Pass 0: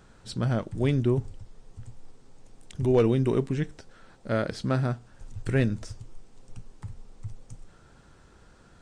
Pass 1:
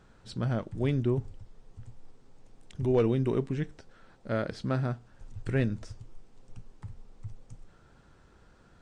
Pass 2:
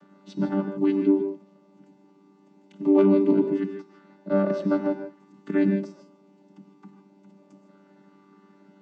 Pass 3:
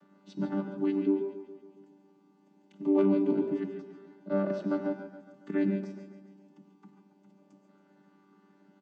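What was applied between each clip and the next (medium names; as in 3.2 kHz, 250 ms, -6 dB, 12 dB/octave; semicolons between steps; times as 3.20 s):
treble shelf 7.6 kHz -10.5 dB; trim -3.5 dB
vocoder on a held chord bare fifth, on G3; gated-style reverb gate 180 ms rising, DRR 6.5 dB; trim +7.5 dB
feedback delay 139 ms, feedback 56%, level -11 dB; trim -6.5 dB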